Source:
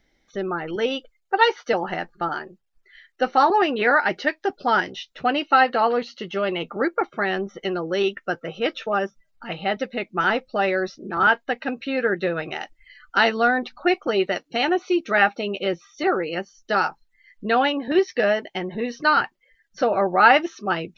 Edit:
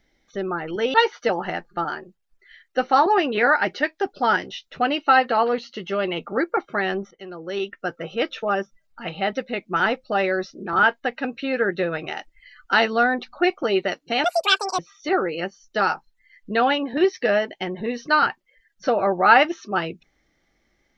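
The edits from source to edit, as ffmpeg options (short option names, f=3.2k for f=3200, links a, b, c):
-filter_complex "[0:a]asplit=5[a][b][c][d][e];[a]atrim=end=0.942[f];[b]atrim=start=1.378:end=7.55,asetpts=PTS-STARTPTS,afade=t=out:st=6.168:d=0.004:c=hsin:silence=0.125893[g];[c]atrim=start=7.55:end=14.684,asetpts=PTS-STARTPTS,afade=t=in:d=0.94:silence=0.125893[h];[d]atrim=start=14.68:end=15.73,asetpts=PTS-STARTPTS,asetrate=84672,aresample=44100,atrim=end_sample=24117,asetpts=PTS-STARTPTS[i];[e]atrim=start=15.726[j];[g][h]concat=n=2:v=0:a=1[k];[f][k]acrossfade=d=0.004:c1=hsin:c2=hsin[l];[l][i]acrossfade=d=0.004:c1=hsin:c2=hsin[m];[m][j]acrossfade=d=0.004:c1=hsin:c2=hsin"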